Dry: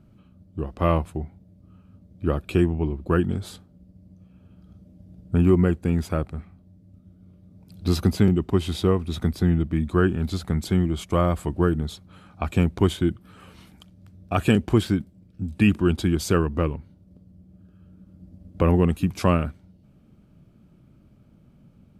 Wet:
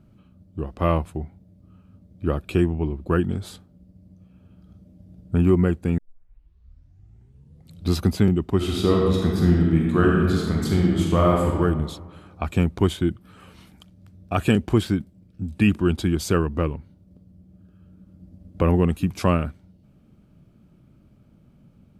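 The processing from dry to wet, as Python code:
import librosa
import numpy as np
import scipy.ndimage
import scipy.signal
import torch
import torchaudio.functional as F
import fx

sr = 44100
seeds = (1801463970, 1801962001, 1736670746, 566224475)

y = fx.reverb_throw(x, sr, start_s=8.56, length_s=2.96, rt60_s=1.6, drr_db=-2.0)
y = fx.edit(y, sr, fx.tape_start(start_s=5.98, length_s=1.92), tone=tone)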